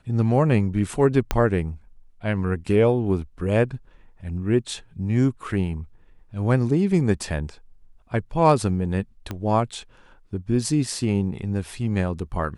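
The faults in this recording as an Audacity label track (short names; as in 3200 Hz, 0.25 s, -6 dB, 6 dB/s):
1.310000	1.310000	pop -7 dBFS
9.310000	9.310000	pop -16 dBFS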